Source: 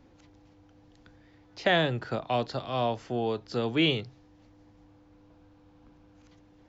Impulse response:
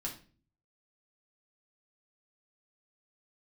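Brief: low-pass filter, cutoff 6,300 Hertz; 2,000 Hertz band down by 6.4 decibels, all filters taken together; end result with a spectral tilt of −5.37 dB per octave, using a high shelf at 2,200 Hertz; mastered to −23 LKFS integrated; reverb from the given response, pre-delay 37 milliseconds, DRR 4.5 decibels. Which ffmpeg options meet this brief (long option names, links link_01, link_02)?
-filter_complex "[0:a]lowpass=6300,equalizer=frequency=2000:width_type=o:gain=-3.5,highshelf=frequency=2200:gain=-8,asplit=2[link_01][link_02];[1:a]atrim=start_sample=2205,adelay=37[link_03];[link_02][link_03]afir=irnorm=-1:irlink=0,volume=-4.5dB[link_04];[link_01][link_04]amix=inputs=2:normalize=0,volume=6dB"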